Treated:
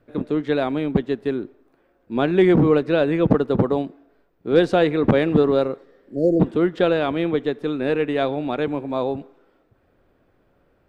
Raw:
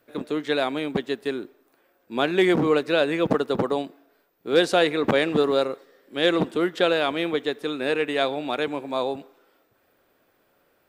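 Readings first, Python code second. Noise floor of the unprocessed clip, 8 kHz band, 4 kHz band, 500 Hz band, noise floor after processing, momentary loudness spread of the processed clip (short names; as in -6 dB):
-66 dBFS, under -10 dB, -6.5 dB, +3.0 dB, -63 dBFS, 10 LU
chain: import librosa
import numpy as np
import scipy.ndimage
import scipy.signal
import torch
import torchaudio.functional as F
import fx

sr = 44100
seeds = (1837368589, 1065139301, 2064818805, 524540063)

y = fx.spec_repair(x, sr, seeds[0], start_s=6.12, length_s=0.26, low_hz=700.0, high_hz=4200.0, source='before')
y = fx.riaa(y, sr, side='playback')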